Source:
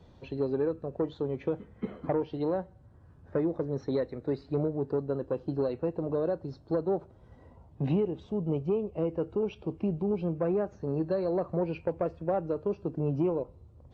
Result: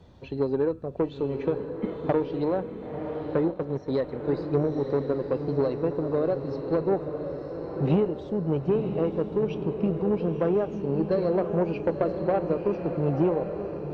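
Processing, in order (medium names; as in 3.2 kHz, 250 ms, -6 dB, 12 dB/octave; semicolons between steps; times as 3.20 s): Chebyshev shaper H 3 -20 dB, 6 -34 dB, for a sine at -16.5 dBFS; echo that smears into a reverb 991 ms, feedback 48%, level -6.5 dB; 3.40–4.04 s: transient shaper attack -3 dB, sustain -8 dB; trim +6 dB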